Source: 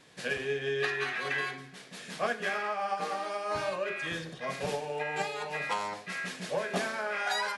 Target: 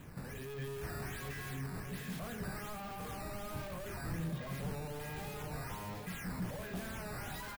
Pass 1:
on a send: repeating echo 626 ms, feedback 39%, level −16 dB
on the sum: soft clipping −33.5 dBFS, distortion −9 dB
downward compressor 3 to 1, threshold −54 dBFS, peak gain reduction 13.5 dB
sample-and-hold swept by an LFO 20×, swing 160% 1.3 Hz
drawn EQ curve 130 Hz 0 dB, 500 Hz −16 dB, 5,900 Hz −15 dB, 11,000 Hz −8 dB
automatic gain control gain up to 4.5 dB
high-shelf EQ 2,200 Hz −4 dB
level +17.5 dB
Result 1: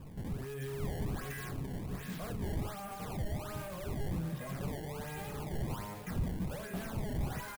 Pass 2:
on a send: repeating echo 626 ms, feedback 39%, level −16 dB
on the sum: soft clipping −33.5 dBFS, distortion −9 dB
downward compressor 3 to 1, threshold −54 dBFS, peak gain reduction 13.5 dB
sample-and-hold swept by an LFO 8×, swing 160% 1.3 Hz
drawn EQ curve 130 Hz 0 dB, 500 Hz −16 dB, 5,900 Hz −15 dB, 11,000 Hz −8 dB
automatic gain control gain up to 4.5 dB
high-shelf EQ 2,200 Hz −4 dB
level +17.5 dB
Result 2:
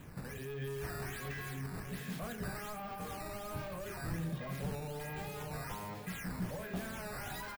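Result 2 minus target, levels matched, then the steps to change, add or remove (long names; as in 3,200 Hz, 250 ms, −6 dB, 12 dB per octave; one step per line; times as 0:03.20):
soft clipping: distortion −5 dB
change: soft clipping −42.5 dBFS, distortion −4 dB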